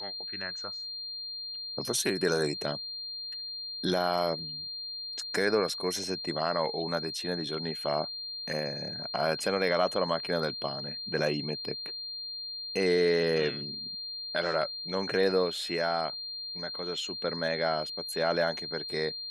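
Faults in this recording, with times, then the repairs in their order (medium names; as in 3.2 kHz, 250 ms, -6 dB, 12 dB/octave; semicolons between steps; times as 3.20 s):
whine 4.2 kHz -36 dBFS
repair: band-stop 4.2 kHz, Q 30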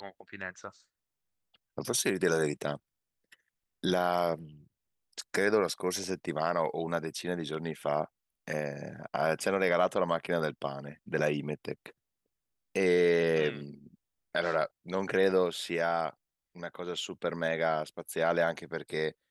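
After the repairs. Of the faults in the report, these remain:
nothing left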